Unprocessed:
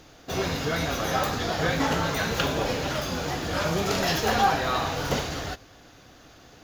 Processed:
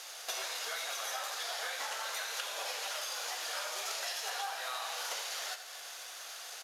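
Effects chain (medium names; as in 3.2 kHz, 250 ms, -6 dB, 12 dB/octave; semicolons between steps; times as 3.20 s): CVSD coder 64 kbps; high-pass 560 Hz 24 dB/octave; tilt EQ +3 dB/octave; compression 12:1, threshold -39 dBFS, peak gain reduction 22 dB; on a send: feedback delay 84 ms, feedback 56%, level -10.5 dB; on the sum: trim +3 dB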